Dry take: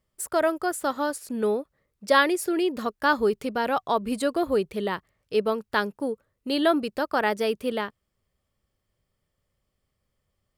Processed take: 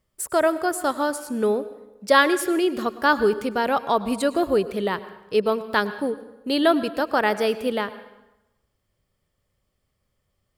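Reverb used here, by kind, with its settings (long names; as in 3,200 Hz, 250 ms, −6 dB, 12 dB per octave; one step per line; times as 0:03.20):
dense smooth reverb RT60 0.97 s, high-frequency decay 0.8×, pre-delay 90 ms, DRR 14 dB
level +3 dB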